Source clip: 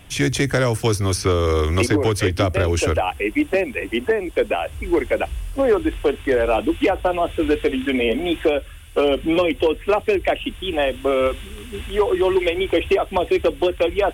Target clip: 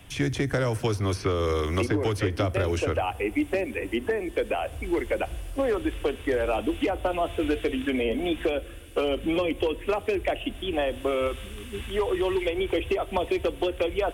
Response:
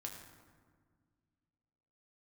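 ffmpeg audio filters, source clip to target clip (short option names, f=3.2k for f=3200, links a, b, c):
-filter_complex "[0:a]acrossover=split=120|1600|3600[a][b][c][d];[a]acompressor=threshold=-29dB:ratio=4[e];[b]acompressor=threshold=-19dB:ratio=4[f];[c]acompressor=threshold=-34dB:ratio=4[g];[d]acompressor=threshold=-40dB:ratio=4[h];[e][f][g][h]amix=inputs=4:normalize=0,asplit=2[i][j];[1:a]atrim=start_sample=2205[k];[j][k]afir=irnorm=-1:irlink=0,volume=-11dB[l];[i][l]amix=inputs=2:normalize=0,volume=-5dB"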